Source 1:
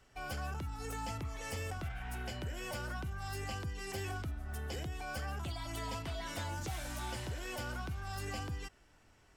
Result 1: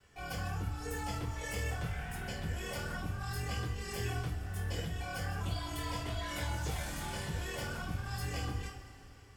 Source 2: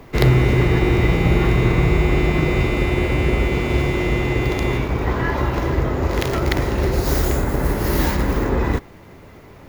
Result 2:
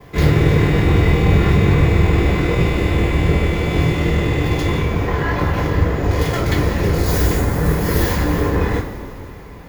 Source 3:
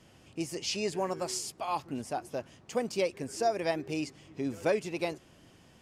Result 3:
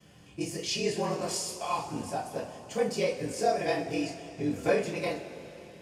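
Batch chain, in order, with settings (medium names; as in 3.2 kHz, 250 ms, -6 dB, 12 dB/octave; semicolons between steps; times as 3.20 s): ring modulator 20 Hz; two-slope reverb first 0.3 s, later 3.5 s, from -20 dB, DRR -8 dB; trim -3.5 dB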